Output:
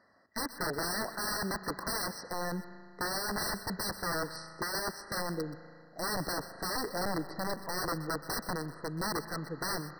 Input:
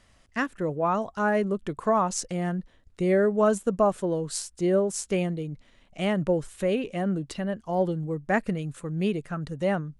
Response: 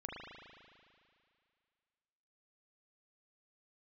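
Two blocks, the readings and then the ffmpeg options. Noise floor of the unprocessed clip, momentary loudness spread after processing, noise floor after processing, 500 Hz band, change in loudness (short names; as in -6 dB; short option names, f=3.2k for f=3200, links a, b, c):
-61 dBFS, 5 LU, -55 dBFS, -13.5 dB, -8.0 dB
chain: -filter_complex "[0:a]highpass=260,lowpass=3.2k,aeval=exprs='(mod(22.4*val(0)+1,2)-1)/22.4':c=same,asplit=2[a][b];[1:a]atrim=start_sample=2205,highshelf=f=2.1k:g=6.5,adelay=126[c];[b][c]afir=irnorm=-1:irlink=0,volume=-13dB[d];[a][d]amix=inputs=2:normalize=0,afftfilt=real='re*eq(mod(floor(b*sr/1024/2000),2),0)':imag='im*eq(mod(floor(b*sr/1024/2000),2),0)':win_size=1024:overlap=0.75"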